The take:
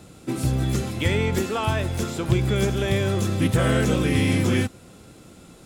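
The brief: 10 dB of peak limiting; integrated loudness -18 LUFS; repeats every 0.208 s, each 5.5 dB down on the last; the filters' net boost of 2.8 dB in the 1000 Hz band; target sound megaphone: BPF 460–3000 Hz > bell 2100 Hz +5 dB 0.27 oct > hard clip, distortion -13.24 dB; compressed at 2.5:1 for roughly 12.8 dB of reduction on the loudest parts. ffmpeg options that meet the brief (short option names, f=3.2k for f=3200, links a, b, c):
-af "equalizer=f=1k:t=o:g=4,acompressor=threshold=-36dB:ratio=2.5,alimiter=level_in=6dB:limit=-24dB:level=0:latency=1,volume=-6dB,highpass=460,lowpass=3k,equalizer=f=2.1k:t=o:w=0.27:g=5,aecho=1:1:208|416|624|832|1040|1248|1456:0.531|0.281|0.149|0.079|0.0419|0.0222|0.0118,asoftclip=type=hard:threshold=-39dB,volume=26.5dB"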